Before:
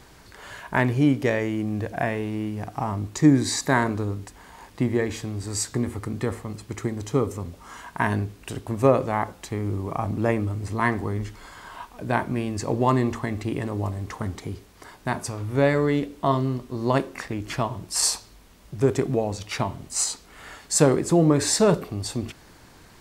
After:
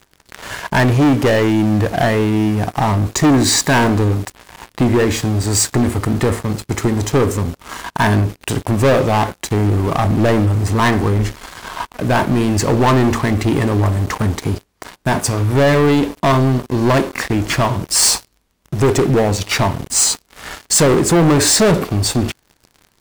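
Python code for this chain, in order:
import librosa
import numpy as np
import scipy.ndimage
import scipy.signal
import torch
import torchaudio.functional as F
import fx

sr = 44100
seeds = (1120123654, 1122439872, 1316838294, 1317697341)

y = fx.leveller(x, sr, passes=5)
y = F.gain(torch.from_numpy(y), -3.5).numpy()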